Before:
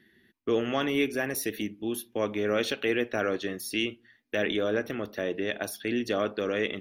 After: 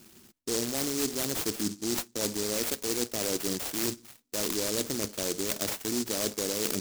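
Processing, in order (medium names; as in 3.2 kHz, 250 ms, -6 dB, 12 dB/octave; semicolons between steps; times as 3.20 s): peaking EQ 4.9 kHz +5.5 dB 0.94 oct; reverse; compression 6:1, threshold -35 dBFS, peak gain reduction 13.5 dB; reverse; sample-rate reducer 9.8 kHz; delay time shaken by noise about 5.9 kHz, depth 0.27 ms; trim +7.5 dB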